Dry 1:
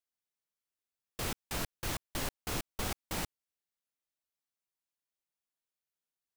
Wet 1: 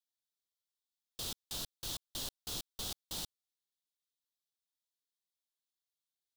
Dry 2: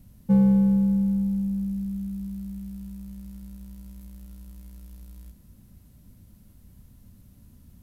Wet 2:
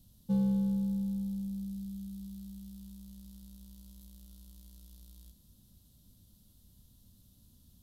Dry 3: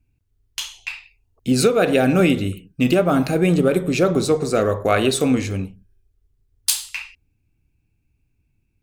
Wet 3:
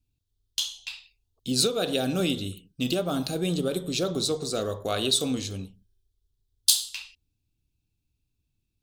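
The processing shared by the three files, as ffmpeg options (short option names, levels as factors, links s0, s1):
-af "highshelf=f=2800:t=q:w=3:g=8,volume=0.299"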